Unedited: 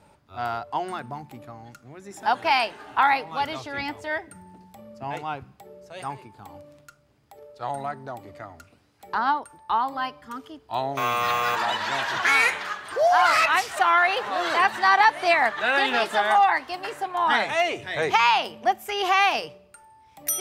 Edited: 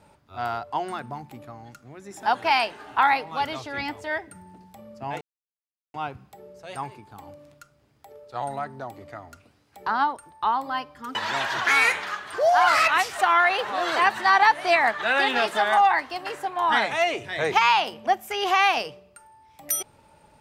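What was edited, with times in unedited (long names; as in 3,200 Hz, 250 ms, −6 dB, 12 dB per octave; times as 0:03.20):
0:05.21: splice in silence 0.73 s
0:10.42–0:11.73: remove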